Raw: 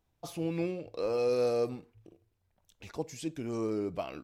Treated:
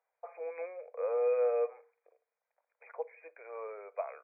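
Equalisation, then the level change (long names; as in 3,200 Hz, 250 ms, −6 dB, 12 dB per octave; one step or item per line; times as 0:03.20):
Chebyshev high-pass filter 470 Hz, order 6
linear-phase brick-wall low-pass 2,500 Hz
0.0 dB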